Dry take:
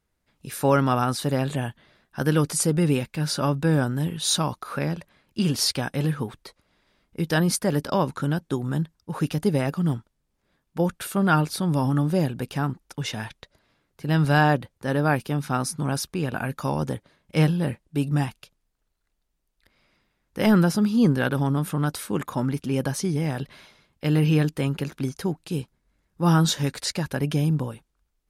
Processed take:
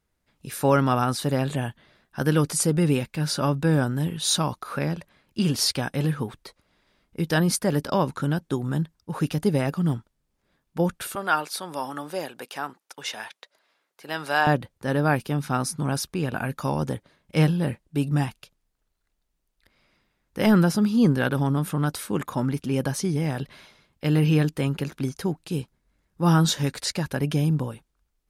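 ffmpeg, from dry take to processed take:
-filter_complex "[0:a]asettb=1/sr,asplit=3[s0][s1][s2];[s0]atrim=end=11.154[s3];[s1]atrim=start=11.15:end=14.47,asetpts=PTS-STARTPTS,afade=t=in:d=0.004:c=qsin,afade=t=out:st=3.316:d=0.004:c=qsin,highpass=560[s4];[s2]atrim=start=14.466[s5];[s3][s4]acrossfade=d=0.004:c1=hsin:c2=qsin[s6];[s6][s5]acrossfade=d=0.004:c1=qsin:c2=hsin"

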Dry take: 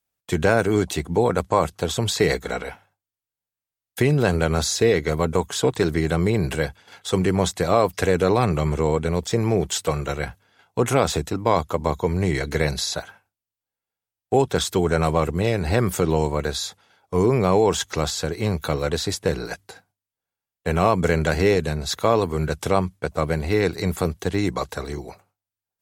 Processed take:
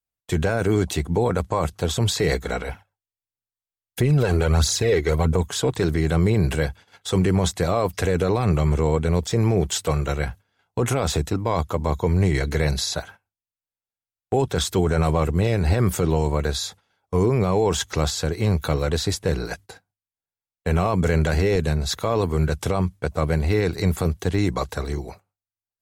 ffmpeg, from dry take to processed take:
-filter_complex "[0:a]asettb=1/sr,asplit=3[s0][s1][s2];[s0]atrim=end=2.694[s3];[s1]atrim=start=2.69:end=5.43,asetpts=PTS-STARTPTS,afade=t=in:d=0.004:c=qsin,afade=t=out:st=2.736:d=0.004:c=qsin,aphaser=in_gain=1:out_gain=1:delay=3:decay=0.5:speed=1.5:type=triangular[s4];[s2]atrim=start=5.426[s5];[s3][s4]acrossfade=d=0.004:c1=hsin:c2=qsin[s6];[s6][s5]acrossfade=d=0.004:c1=qsin:c2=hsin,agate=range=0.282:threshold=0.00708:ratio=16:detection=peak,lowshelf=f=93:g=11,alimiter=limit=0.282:level=0:latency=1:release=10"

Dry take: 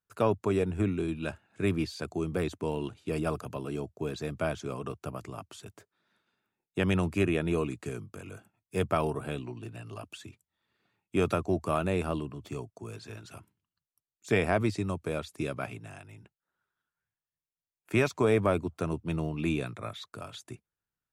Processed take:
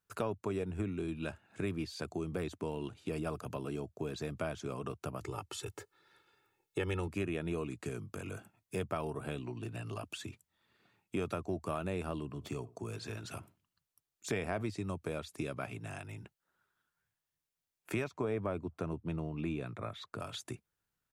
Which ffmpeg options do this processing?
-filter_complex "[0:a]asettb=1/sr,asplit=3[s0][s1][s2];[s0]atrim=end=5.214[s3];[s1]atrim=start=5.21:end=7.08,asetpts=PTS-STARTPTS,afade=t=in:d=0.004:c=qsin,afade=t=out:st=1.866:d=0.004:c=qsin,aecho=1:1:2.3:0.98,atrim=end_sample=82467[s4];[s2]atrim=start=7.076[s5];[s3][s4]acrossfade=d=0.004:c1=hsin:c2=qsin[s6];[s6][s5]acrossfade=d=0.004:c1=qsin:c2=hsin,asplit=3[s7][s8][s9];[s7]afade=t=out:st=12.39:d=0.02[s10];[s8]asplit=2[s11][s12];[s12]adelay=80,lowpass=f=1300:p=1,volume=0.0891,asplit=2[s13][s14];[s14]adelay=80,lowpass=f=1300:p=1,volume=0.2[s15];[s11][s13][s15]amix=inputs=3:normalize=0,afade=t=in:st=12.39:d=0.02,afade=t=out:st=14.61:d=0.02[s16];[s9]afade=t=in:st=14.61:d=0.02[s17];[s10][s16][s17]amix=inputs=3:normalize=0,asettb=1/sr,asplit=3[s18][s19][s20];[s18]atrim=end=18.044[s21];[s19]atrim=start=18.04:end=20.2,asetpts=PTS-STARTPTS,afade=t=in:d=0.004:c=qsin,afade=t=out:st=2.156:d=0.004:c=qsin,highshelf=f=3400:g=-11[s22];[s20]atrim=start=20.196[s23];[s21][s22]acrossfade=d=0.004:c1=hsin:c2=qsin[s24];[s24][s23]acrossfade=d=0.004:c1=qsin:c2=hsin,acompressor=threshold=0.00631:ratio=2.5,volume=1.68"

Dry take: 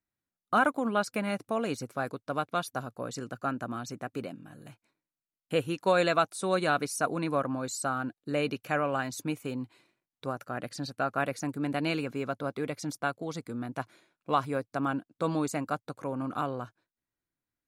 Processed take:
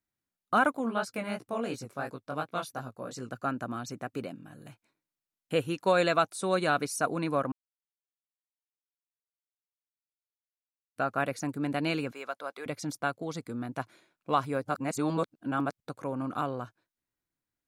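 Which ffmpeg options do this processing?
-filter_complex "[0:a]asplit=3[s0][s1][s2];[s0]afade=t=out:st=0.76:d=0.02[s3];[s1]flanger=delay=15.5:depth=6.5:speed=2.8,afade=t=in:st=0.76:d=0.02,afade=t=out:st=3.3:d=0.02[s4];[s2]afade=t=in:st=3.3:d=0.02[s5];[s3][s4][s5]amix=inputs=3:normalize=0,asettb=1/sr,asplit=3[s6][s7][s8];[s6]atrim=end=12.124[s9];[s7]atrim=start=12.12:end=12.66,asetpts=PTS-STARTPTS,afade=t=in:d=0.004:c=qsin,afade=t=out:st=0.536:d=0.004:c=qsin,highpass=670[s10];[s8]atrim=start=12.656[s11];[s9][s10]acrossfade=d=0.004:c1=hsin:c2=qsin[s12];[s12][s11]acrossfade=d=0.004:c1=qsin:c2=hsin,asplit=5[s13][s14][s15][s16][s17];[s13]atrim=end=7.52,asetpts=PTS-STARTPTS,afade=t=out:st=7.516:d=0.004:c=hsin[s18];[s14]atrim=start=7.52:end=10.96,asetpts=PTS-STARTPTS,volume=0[s19];[s15]atrim=start=10.96:end=14.652,asetpts=PTS-STARTPTS,afade=t=in:d=0.004:c=hsin[s20];[s16]atrim=start=14.648:end=15.802,asetpts=PTS-STARTPTS,areverse[s21];[s17]atrim=start=15.798[s22];[s18][s19][s20]concat=n=3:v=0:a=1[s23];[s23][s21]acrossfade=d=0.004:c1=hsin:c2=hsin[s24];[s24][s22]acrossfade=d=0.004:c1=hsin:c2=hsin"

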